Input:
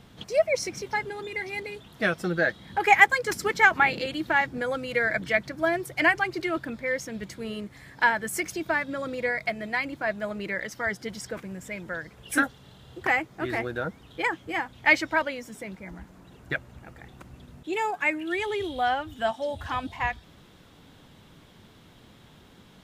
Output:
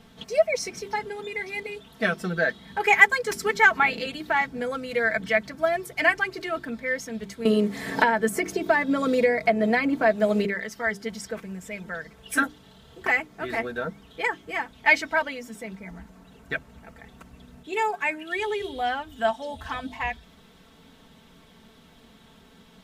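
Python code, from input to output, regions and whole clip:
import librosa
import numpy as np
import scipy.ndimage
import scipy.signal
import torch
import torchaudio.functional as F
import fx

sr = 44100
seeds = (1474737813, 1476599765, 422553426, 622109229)

y = fx.chain(x, sr, fx.peak_eq(hz=360.0, db=10.0, octaves=2.4),
    fx.band_squash(depth_pct=100), at=(7.45, 10.45))
y = fx.hum_notches(y, sr, base_hz=50, count=8)
y = y + 0.65 * np.pad(y, (int(4.5 * sr / 1000.0), 0))[:len(y)]
y = y * librosa.db_to_amplitude(-1.0)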